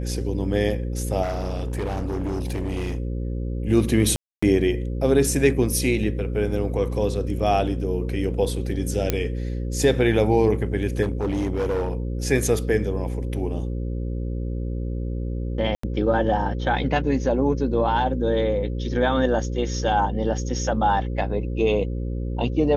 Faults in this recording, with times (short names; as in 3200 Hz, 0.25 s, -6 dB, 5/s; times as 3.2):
buzz 60 Hz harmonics 9 -27 dBFS
1.22–3 clipped -23 dBFS
4.16–4.42 gap 0.265 s
9.1 pop -6 dBFS
11.02–11.93 clipped -20 dBFS
15.75–15.83 gap 84 ms